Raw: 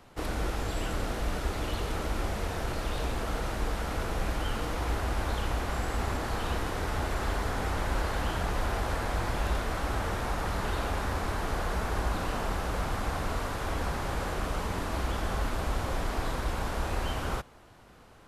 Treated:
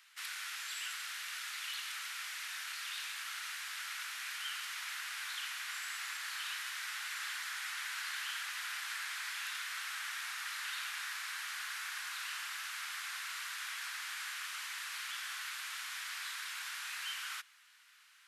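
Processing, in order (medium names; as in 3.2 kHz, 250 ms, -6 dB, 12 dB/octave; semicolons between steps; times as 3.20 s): inverse Chebyshev high-pass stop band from 480 Hz, stop band 60 dB; trim +1 dB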